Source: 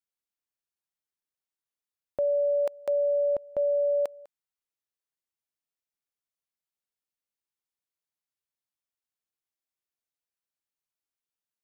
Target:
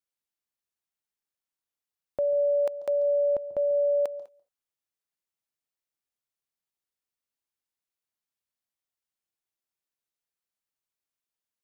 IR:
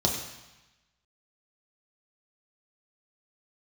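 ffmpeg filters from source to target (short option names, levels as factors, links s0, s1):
-filter_complex "[0:a]asplit=2[s0][s1];[1:a]atrim=start_sample=2205,atrim=end_sample=3969,adelay=139[s2];[s1][s2]afir=irnorm=-1:irlink=0,volume=0.0299[s3];[s0][s3]amix=inputs=2:normalize=0"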